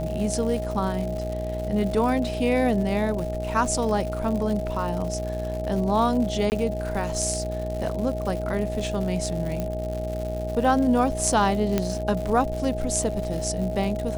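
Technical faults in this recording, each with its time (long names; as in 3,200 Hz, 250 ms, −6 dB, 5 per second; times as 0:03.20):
mains buzz 60 Hz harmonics 14 −31 dBFS
surface crackle 180 per second −31 dBFS
whistle 630 Hz −30 dBFS
0:06.50–0:06.52: drop-out 19 ms
0:09.60: click −15 dBFS
0:11.78: click −9 dBFS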